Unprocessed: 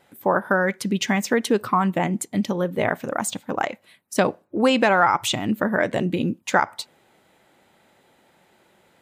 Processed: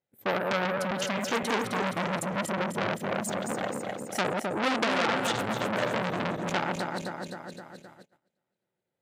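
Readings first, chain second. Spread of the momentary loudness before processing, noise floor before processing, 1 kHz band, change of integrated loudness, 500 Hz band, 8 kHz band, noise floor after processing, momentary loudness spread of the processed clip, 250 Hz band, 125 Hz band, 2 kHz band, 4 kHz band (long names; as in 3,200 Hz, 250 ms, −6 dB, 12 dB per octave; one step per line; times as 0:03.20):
9 LU, −61 dBFS, −7.0 dB, −7.0 dB, −7.0 dB, −6.5 dB, −85 dBFS, 10 LU, −8.5 dB, −7.0 dB, −6.0 dB, −4.0 dB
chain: feedback delay that plays each chunk backwards 130 ms, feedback 75%, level −4.5 dB
noise gate −44 dBFS, range −26 dB
octave-band graphic EQ 125/500/1,000 Hz +9/+6/−5 dB
saturating transformer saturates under 3,400 Hz
level −6.5 dB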